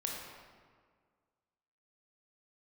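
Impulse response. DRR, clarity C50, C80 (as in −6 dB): −2.0 dB, 0.5 dB, 2.5 dB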